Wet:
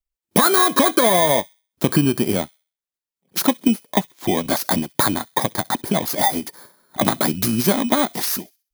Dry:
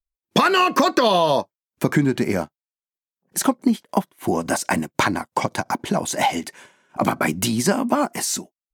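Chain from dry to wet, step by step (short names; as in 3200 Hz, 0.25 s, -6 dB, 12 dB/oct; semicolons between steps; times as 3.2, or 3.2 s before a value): FFT order left unsorted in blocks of 16 samples; thin delay 65 ms, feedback 32%, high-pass 2700 Hz, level -21 dB; gain +1.5 dB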